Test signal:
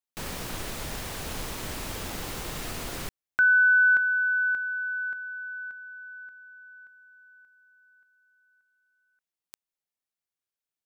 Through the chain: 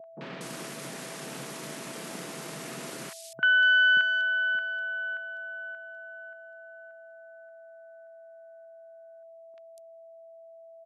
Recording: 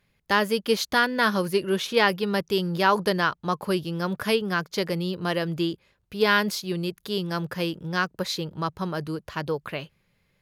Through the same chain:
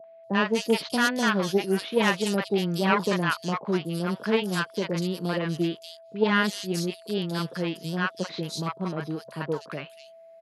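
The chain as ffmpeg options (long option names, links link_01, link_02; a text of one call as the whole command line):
ffmpeg -i in.wav -filter_complex "[0:a]aeval=exprs='0.473*(cos(1*acos(clip(val(0)/0.473,-1,1)))-cos(1*PI/2))+0.168*(cos(4*acos(clip(val(0)/0.473,-1,1)))-cos(4*PI/2))+0.0188*(cos(5*acos(clip(val(0)/0.473,-1,1)))-cos(5*PI/2))+0.0266*(cos(6*acos(clip(val(0)/0.473,-1,1)))-cos(6*PI/2))+0.0119*(cos(7*acos(clip(val(0)/0.473,-1,1)))-cos(7*PI/2))':channel_layout=same,lowshelf=frequency=460:gain=3,acrossover=split=230[link_01][link_02];[link_01]aeval=exprs='sgn(val(0))*max(abs(val(0))-0.00668,0)':channel_layout=same[link_03];[link_03][link_02]amix=inputs=2:normalize=0,aeval=exprs='val(0)+0.0141*sin(2*PI*660*n/s)':channel_layout=same,acrossover=split=770|3700[link_04][link_05][link_06];[link_05]adelay=40[link_07];[link_06]adelay=240[link_08];[link_04][link_07][link_08]amix=inputs=3:normalize=0,afftfilt=real='re*between(b*sr/4096,120,12000)':imag='im*between(b*sr/4096,120,12000)':win_size=4096:overlap=0.75,volume=-2.5dB" out.wav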